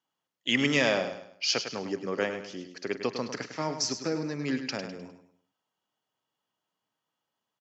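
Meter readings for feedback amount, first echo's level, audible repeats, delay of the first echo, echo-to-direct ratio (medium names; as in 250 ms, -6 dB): 37%, -9.0 dB, 4, 102 ms, -8.5 dB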